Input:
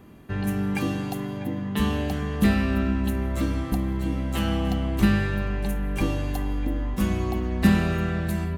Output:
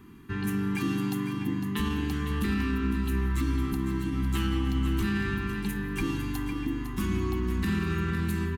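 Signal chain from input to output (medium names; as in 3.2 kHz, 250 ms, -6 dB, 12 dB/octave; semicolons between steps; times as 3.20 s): Chebyshev band-stop 370–1000 Hz, order 2; hum notches 50/100/150/200 Hz; peak limiter -20 dBFS, peak gain reduction 11.5 dB; delay 505 ms -9.5 dB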